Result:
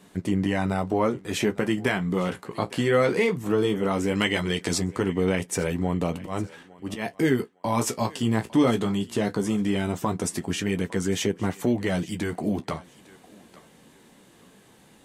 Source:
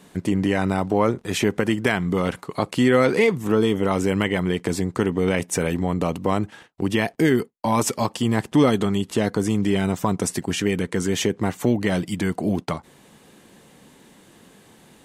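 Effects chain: 4.15–4.78 s: peaking EQ 5.2 kHz +11.5 dB 2.2 oct; 6.17–7.14 s: slow attack 131 ms; flange 0.18 Hz, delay 9.8 ms, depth 8.2 ms, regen -35%; thinning echo 856 ms, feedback 26%, high-pass 420 Hz, level -19.5 dB

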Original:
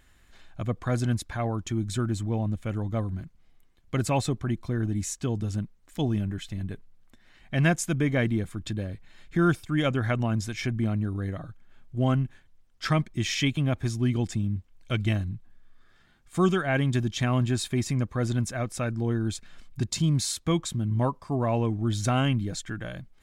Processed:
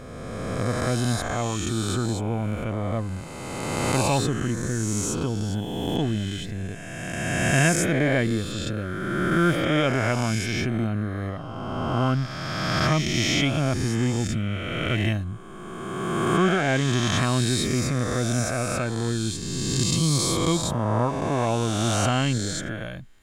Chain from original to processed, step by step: reverse spectral sustain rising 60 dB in 2.38 s

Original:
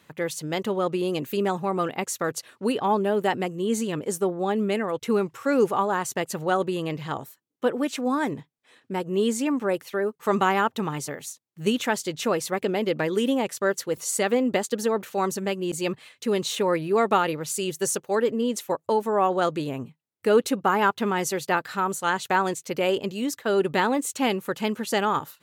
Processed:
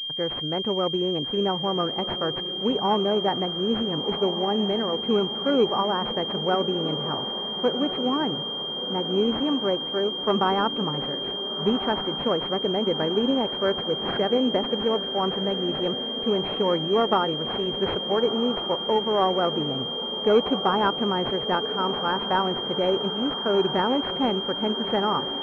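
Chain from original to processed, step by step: echo that smears into a reverb 1380 ms, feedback 64%, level -11 dB; class-D stage that switches slowly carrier 3.2 kHz

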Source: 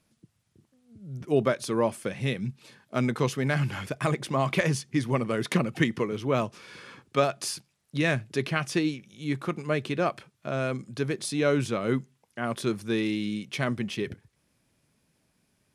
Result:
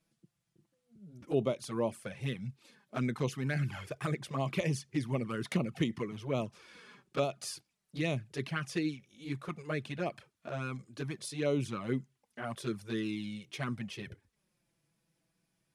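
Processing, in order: touch-sensitive flanger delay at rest 6.1 ms, full sweep at -20 dBFS; trim -5.5 dB

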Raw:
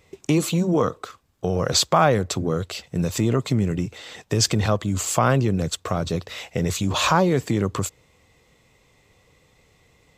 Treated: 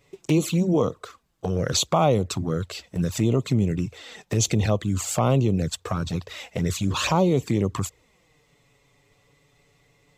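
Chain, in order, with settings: touch-sensitive flanger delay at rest 7.3 ms, full sweep at -16.5 dBFS

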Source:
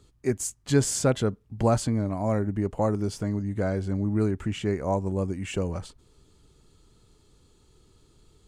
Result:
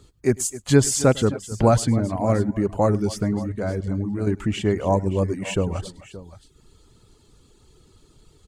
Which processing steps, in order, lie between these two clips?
3.48–4.27 s: level held to a coarse grid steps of 10 dB; multi-tap echo 103/260/573 ms -11.5/-15.5/-16.5 dB; reverb removal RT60 0.6 s; trim +6 dB

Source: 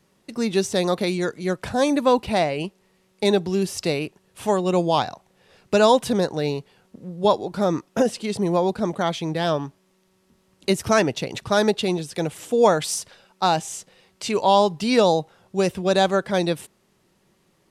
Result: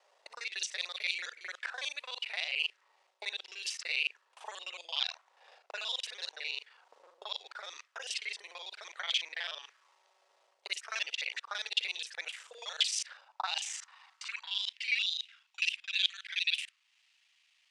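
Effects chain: time reversed locally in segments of 37 ms; reverse; compression 6:1, threshold -28 dBFS, peak gain reduction 15.5 dB; reverse; auto-wah 670–3100 Hz, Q 3.1, up, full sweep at -26 dBFS; frequency weighting ITU-R 468; high-pass sweep 460 Hz -> 2.6 kHz, 13.00–15.06 s; bass shelf 390 Hz -10.5 dB; tape noise reduction on one side only encoder only; trim +2.5 dB

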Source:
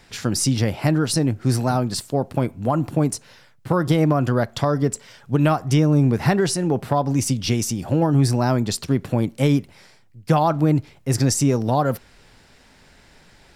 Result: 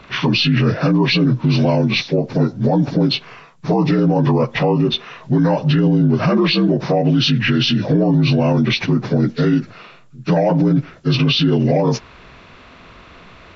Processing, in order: frequency axis rescaled in octaves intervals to 78%; loudness maximiser +18 dB; trim -6.5 dB

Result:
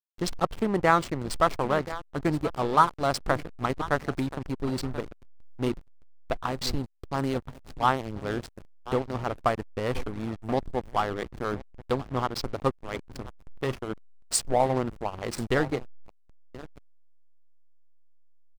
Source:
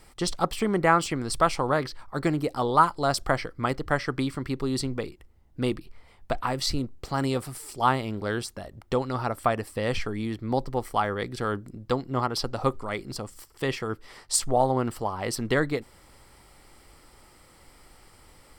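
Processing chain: feedback delay 1029 ms, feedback 24%, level -12.5 dB; hysteresis with a dead band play -24 dBFS

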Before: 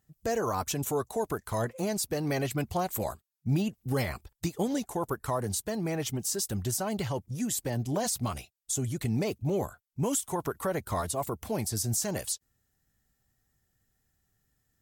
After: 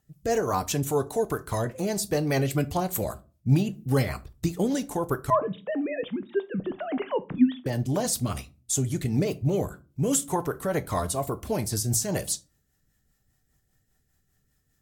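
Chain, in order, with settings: 5.30–7.66 s: formants replaced by sine waves; rotary cabinet horn 5 Hz; simulated room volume 140 m³, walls furnished, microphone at 0.4 m; trim +5.5 dB

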